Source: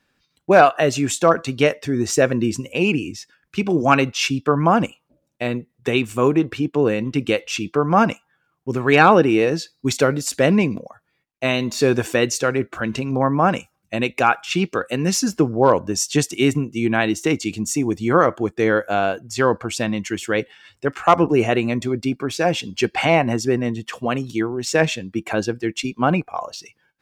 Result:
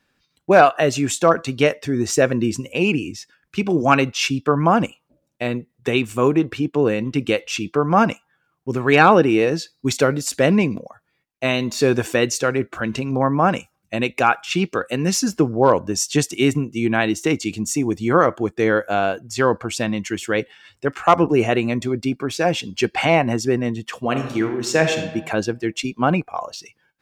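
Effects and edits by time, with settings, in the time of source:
24.02–25 reverb throw, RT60 1.1 s, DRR 5.5 dB

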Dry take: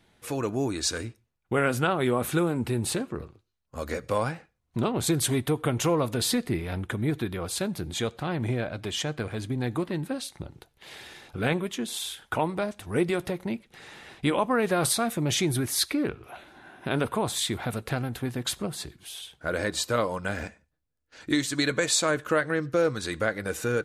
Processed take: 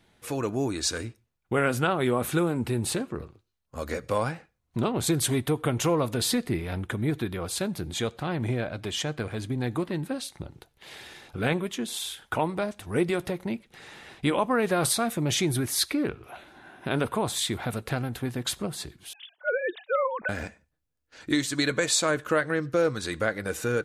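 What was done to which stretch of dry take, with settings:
19.13–20.29 sine-wave speech

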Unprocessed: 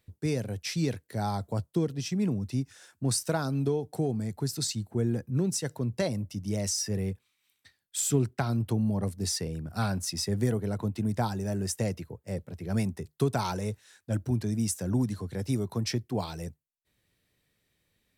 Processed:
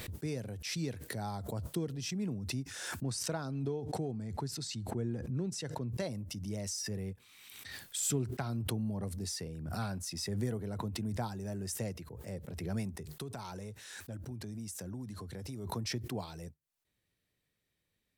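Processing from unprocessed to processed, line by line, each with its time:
3.03–5.89 air absorption 51 m
13.16–15.67 compressor 3:1, threshold -32 dBFS
whole clip: backwards sustainer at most 37 dB/s; gain -8.5 dB

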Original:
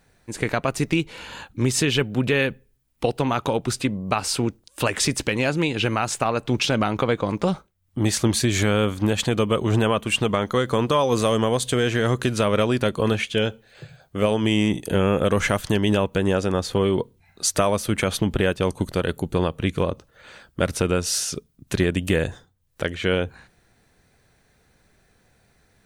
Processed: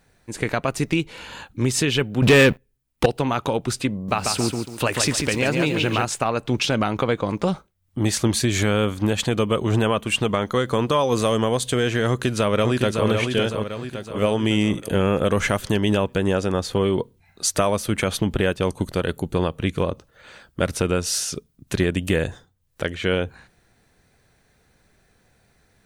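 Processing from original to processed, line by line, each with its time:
2.22–3.06 sample leveller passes 3
3.94–6.05 lo-fi delay 0.142 s, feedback 35%, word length 8-bit, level -4 dB
12.08–13.07 echo throw 0.56 s, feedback 50%, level -5 dB

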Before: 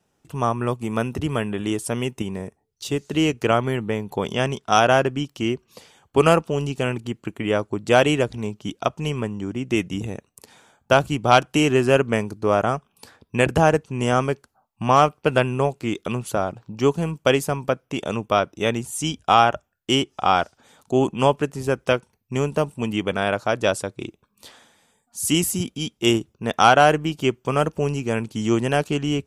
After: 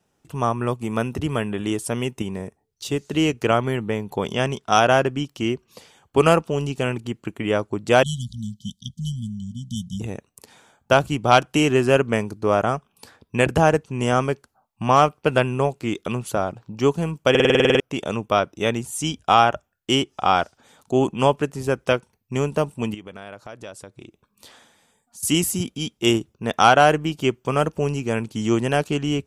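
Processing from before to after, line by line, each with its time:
8.03–10 brick-wall FIR band-stop 240–3000 Hz
17.3 stutter in place 0.05 s, 10 plays
22.94–25.23 compressor 2.5:1, threshold -42 dBFS

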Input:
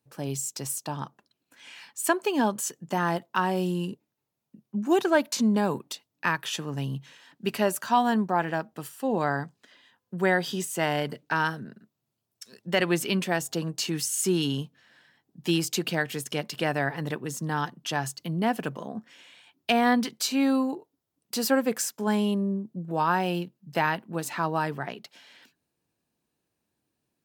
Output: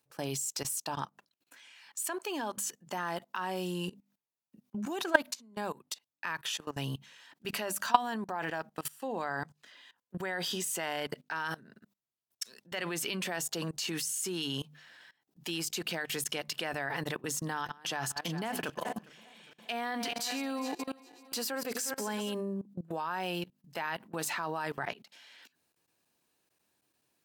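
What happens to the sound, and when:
5.34–7.66 fade in equal-power, from -17 dB
17.47–22.33 regenerating reverse delay 0.203 s, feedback 59%, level -13 dB
whole clip: low shelf 450 Hz -11 dB; notches 50/100/150/200/250 Hz; level quantiser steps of 21 dB; gain +7 dB

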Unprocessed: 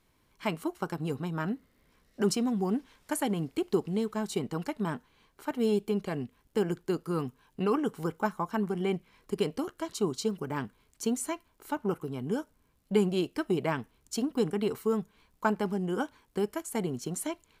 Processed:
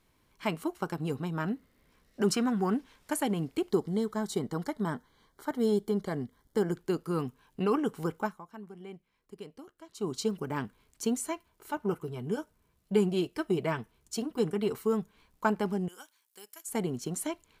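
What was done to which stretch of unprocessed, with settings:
2.32–2.74 bell 1500 Hz +14.5 dB 0.84 oct
3.7–6.75 Butterworth band-stop 2600 Hz, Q 2.9
8.17–10.16 dip -15.5 dB, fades 0.24 s
11.21–14.71 notch comb 270 Hz
15.88–16.68 differentiator

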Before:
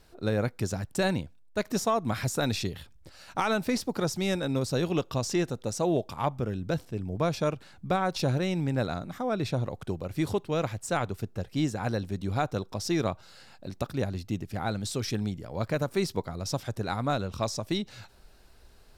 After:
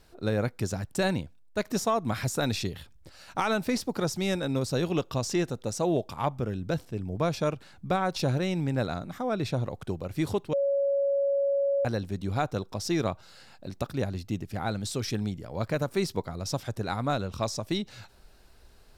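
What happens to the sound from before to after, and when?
10.53–11.85 bleep 558 Hz -22.5 dBFS

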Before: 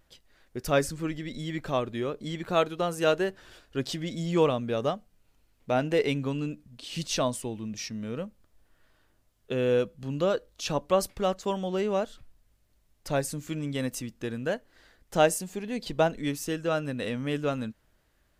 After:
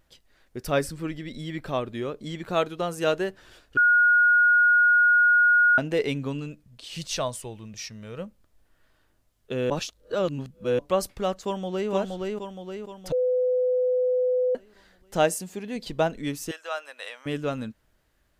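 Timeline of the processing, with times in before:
0.65–1.89 bell 6700 Hz -8 dB 0.21 oct
3.77–5.78 bleep 1440 Hz -15 dBFS
6.39–8.18 bell 260 Hz -7 dB -> -13.5 dB
9.7–10.79 reverse
11.43–11.91 echo throw 0.47 s, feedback 55%, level -2.5 dB
13.12–14.55 bleep 503 Hz -20 dBFS
15.24–15.76 HPF 56 Hz
16.51–17.26 HPF 680 Hz 24 dB/oct

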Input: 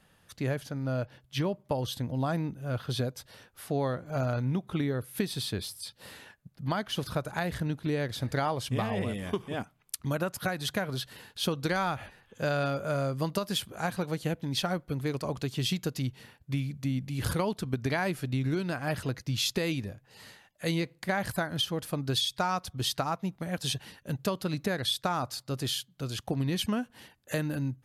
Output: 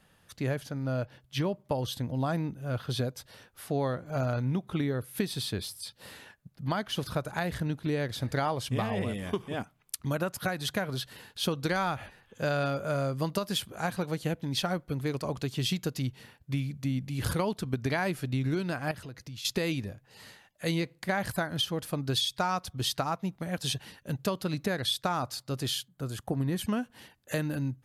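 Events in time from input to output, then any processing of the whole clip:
18.91–19.45 compressor 3:1, threshold -43 dBFS
25.88–26.64 band shelf 3700 Hz -8 dB

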